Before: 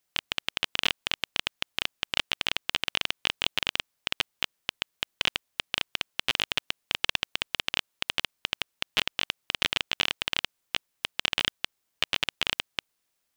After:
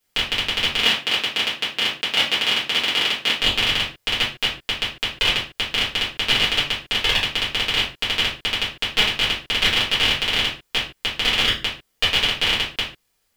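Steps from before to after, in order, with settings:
0:00.79–0:03.37: high-pass filter 180 Hz 12 dB per octave
convolution reverb, pre-delay 4 ms, DRR −9 dB

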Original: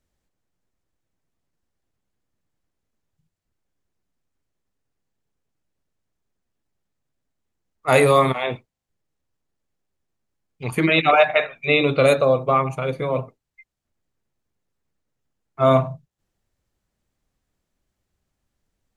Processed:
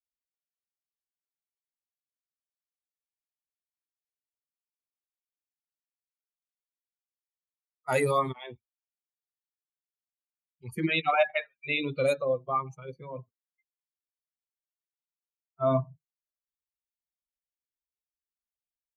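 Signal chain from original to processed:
spectral dynamics exaggerated over time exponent 2
high-pass filter 52 Hz
notch filter 450 Hz, Q 15
level −6.5 dB

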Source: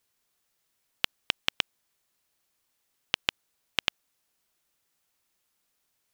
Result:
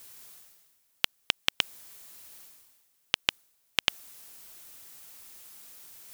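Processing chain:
high-shelf EQ 6,900 Hz +8.5 dB
reversed playback
upward compression, threshold −32 dBFS
reversed playback

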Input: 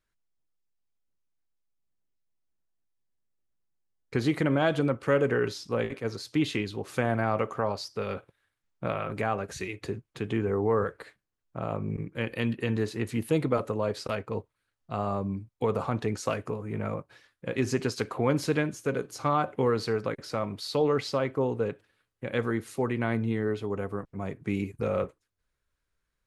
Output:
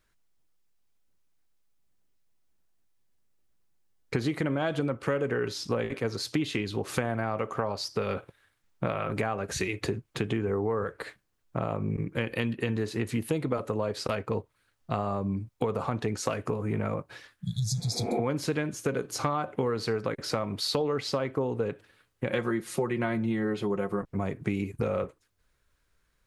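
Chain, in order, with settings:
0:17.41–0:18.17: healed spectral selection 210–3,300 Hz both
0:22.30–0:24.02: comb filter 5.6 ms, depth 71%
downward compressor 6 to 1, threshold −35 dBFS, peak gain reduction 15 dB
level +9 dB

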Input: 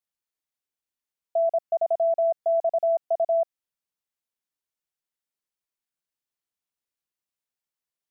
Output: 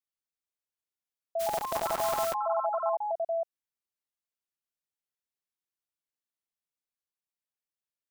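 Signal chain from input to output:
0:01.39–0:02.37: compressing power law on the bin magnitudes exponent 0.35
delay with pitch and tempo change per echo 392 ms, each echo +4 semitones, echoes 3
level −8 dB

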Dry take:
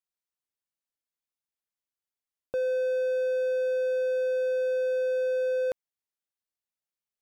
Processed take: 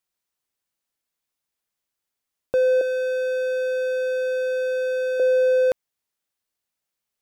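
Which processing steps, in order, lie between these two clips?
0:02.81–0:05.20: high-pass filter 680 Hz 12 dB per octave
level +9 dB

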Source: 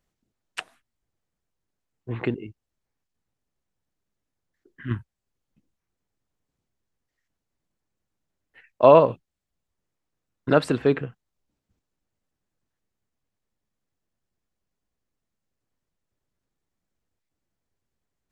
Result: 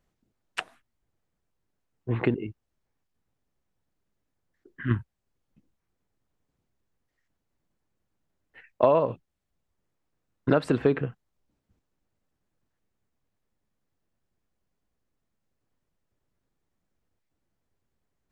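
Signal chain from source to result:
high-shelf EQ 2,800 Hz −6.5 dB
downward compressor 6 to 1, threshold −21 dBFS, peak gain reduction 12 dB
0:02.32–0:04.92: dynamic equaliser 1,400 Hz, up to +4 dB, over −59 dBFS, Q 1.3
level +3.5 dB

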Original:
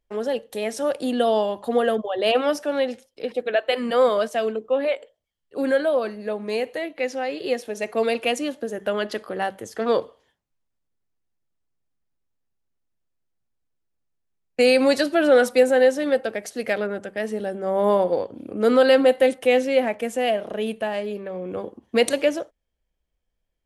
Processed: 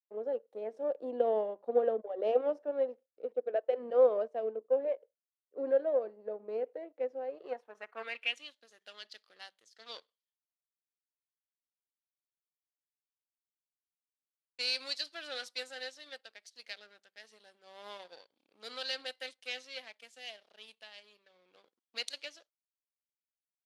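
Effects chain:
power curve on the samples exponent 1.4
band-pass filter sweep 500 Hz → 4,400 Hz, 0:07.22–0:08.62
level −2.5 dB

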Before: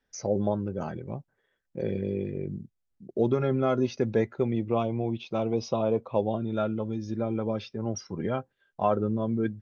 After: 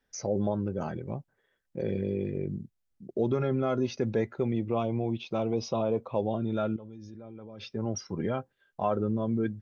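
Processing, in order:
in parallel at +3 dB: brickwall limiter −23 dBFS, peak gain reduction 10.5 dB
0:06.76–0:07.63: on the sum: output level in coarse steps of 19 dB
level −7 dB

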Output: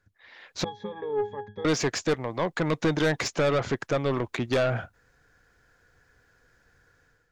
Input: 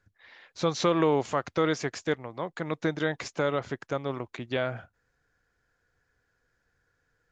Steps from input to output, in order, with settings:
automatic gain control gain up to 11 dB
0:00.64–0:01.65: resonances in every octave G#, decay 0.24 s
soft clipping −19 dBFS, distortion −7 dB

